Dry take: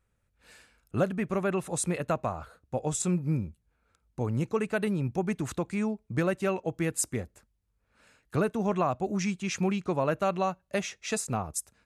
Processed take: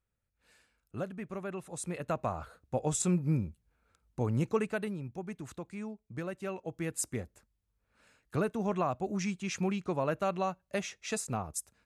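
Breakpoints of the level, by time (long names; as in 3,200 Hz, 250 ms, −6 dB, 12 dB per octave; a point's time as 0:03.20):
0:01.73 −10.5 dB
0:02.36 −1 dB
0:04.56 −1 dB
0:05.04 −11 dB
0:06.29 −11 dB
0:07.15 −4 dB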